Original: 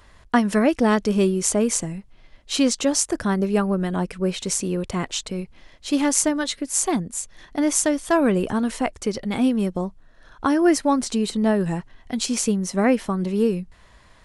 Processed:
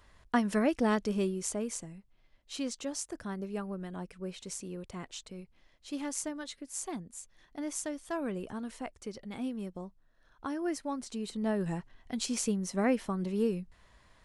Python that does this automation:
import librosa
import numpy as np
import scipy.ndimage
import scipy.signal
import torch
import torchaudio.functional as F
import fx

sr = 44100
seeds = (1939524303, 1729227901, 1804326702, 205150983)

y = fx.gain(x, sr, db=fx.line((0.92, -9.5), (1.85, -16.5), (11.05, -16.5), (11.69, -9.5)))